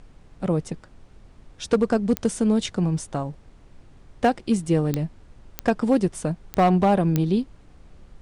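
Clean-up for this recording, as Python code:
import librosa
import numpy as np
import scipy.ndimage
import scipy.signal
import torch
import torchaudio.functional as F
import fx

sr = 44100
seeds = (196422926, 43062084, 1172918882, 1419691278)

y = fx.fix_declip(x, sr, threshold_db=-12.0)
y = fx.fix_declick_ar(y, sr, threshold=10.0)
y = fx.noise_reduce(y, sr, print_start_s=1.06, print_end_s=1.56, reduce_db=18.0)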